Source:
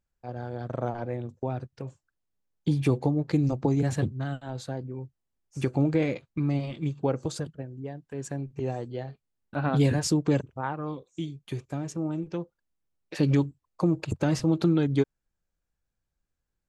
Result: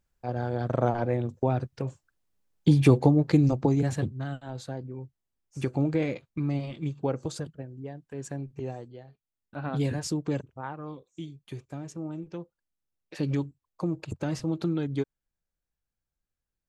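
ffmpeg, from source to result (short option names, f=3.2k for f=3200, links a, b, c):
-af "volume=13dB,afade=t=out:st=3.05:d=0.93:silence=0.421697,afade=t=out:st=8.48:d=0.55:silence=0.281838,afade=t=in:st=9.03:d=0.75:silence=0.421697"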